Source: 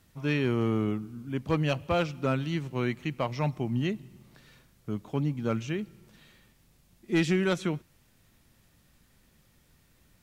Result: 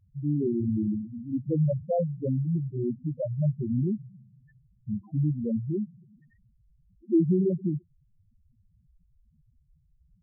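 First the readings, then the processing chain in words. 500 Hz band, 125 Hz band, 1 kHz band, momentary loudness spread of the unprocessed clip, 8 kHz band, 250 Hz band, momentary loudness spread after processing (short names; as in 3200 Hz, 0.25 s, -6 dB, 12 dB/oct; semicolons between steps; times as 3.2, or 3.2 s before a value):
0.0 dB, +3.0 dB, n/a, 9 LU, under -30 dB, +2.5 dB, 9 LU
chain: treble ducked by the level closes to 830 Hz, closed at -22.5 dBFS; loudest bins only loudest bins 2; gain +6.5 dB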